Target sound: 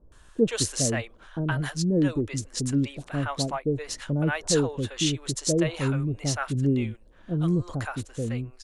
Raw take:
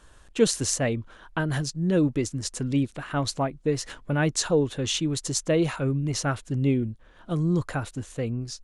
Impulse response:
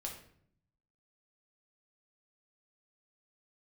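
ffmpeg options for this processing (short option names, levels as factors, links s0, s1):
-filter_complex "[0:a]acrossover=split=620[s0][s1];[s1]adelay=120[s2];[s0][s2]amix=inputs=2:normalize=0"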